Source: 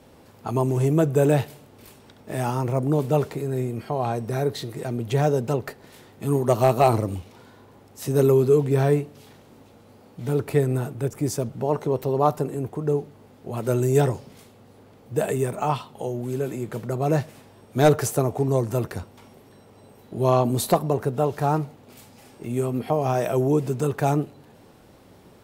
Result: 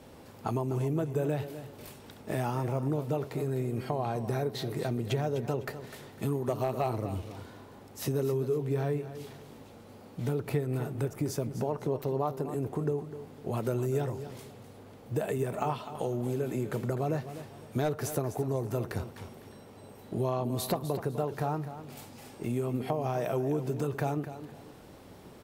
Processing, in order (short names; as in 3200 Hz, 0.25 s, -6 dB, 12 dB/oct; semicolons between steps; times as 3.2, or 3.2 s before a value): dynamic EQ 8100 Hz, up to -6 dB, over -52 dBFS, Q 1.6; compressor 5:1, threshold -28 dBFS, peak gain reduction 15 dB; feedback echo 0.252 s, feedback 28%, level -12 dB